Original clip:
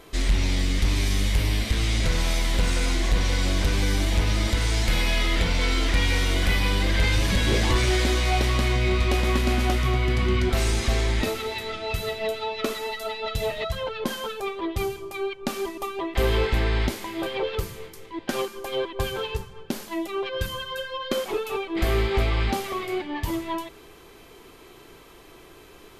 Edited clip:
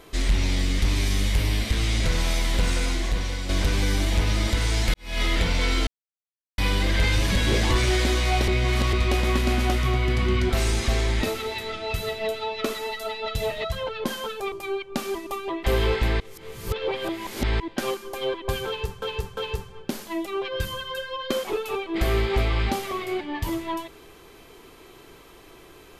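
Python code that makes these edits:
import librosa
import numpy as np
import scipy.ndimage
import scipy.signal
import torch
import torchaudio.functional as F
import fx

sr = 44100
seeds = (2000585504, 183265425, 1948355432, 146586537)

y = fx.edit(x, sr, fx.fade_out_to(start_s=2.71, length_s=0.78, floor_db=-8.0),
    fx.fade_in_span(start_s=4.94, length_s=0.28, curve='qua'),
    fx.silence(start_s=5.87, length_s=0.71),
    fx.reverse_span(start_s=8.48, length_s=0.45),
    fx.cut(start_s=14.52, length_s=0.51),
    fx.reverse_span(start_s=16.71, length_s=1.4),
    fx.repeat(start_s=19.18, length_s=0.35, count=3), tone=tone)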